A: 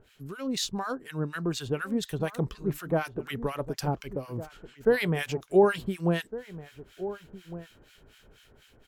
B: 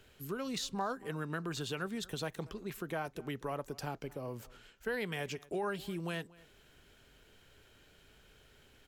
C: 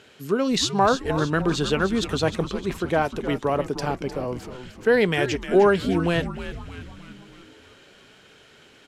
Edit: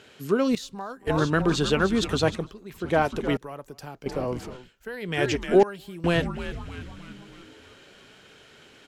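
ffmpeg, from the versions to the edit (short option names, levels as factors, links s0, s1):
-filter_complex "[1:a]asplit=5[s0][s1][s2][s3][s4];[2:a]asplit=6[s5][s6][s7][s8][s9][s10];[s5]atrim=end=0.552[s11];[s0]atrim=start=0.548:end=1.072[s12];[s6]atrim=start=1.068:end=2.52[s13];[s1]atrim=start=2.28:end=2.95[s14];[s7]atrim=start=2.71:end=3.372[s15];[s2]atrim=start=3.368:end=4.062[s16];[s8]atrim=start=4.058:end=4.71[s17];[s3]atrim=start=4.47:end=5.25[s18];[s9]atrim=start=5.01:end=5.632[s19];[s4]atrim=start=5.628:end=6.042[s20];[s10]atrim=start=6.038[s21];[s11][s12]acrossfade=d=0.004:c1=hsin:c2=hsin[s22];[s22][s13]acrossfade=d=0.004:c1=hsin:c2=hsin[s23];[s23][s14]acrossfade=d=0.24:c1=tri:c2=tri[s24];[s24][s15]acrossfade=d=0.24:c1=tri:c2=tri[s25];[s25][s16]acrossfade=d=0.004:c1=hsin:c2=hsin[s26];[s26][s17]acrossfade=d=0.004:c1=hsin:c2=hsin[s27];[s27][s18]acrossfade=d=0.24:c1=tri:c2=tri[s28];[s28][s19]acrossfade=d=0.24:c1=tri:c2=tri[s29];[s29][s20]acrossfade=d=0.004:c1=hsin:c2=hsin[s30];[s30][s21]acrossfade=d=0.004:c1=hsin:c2=hsin"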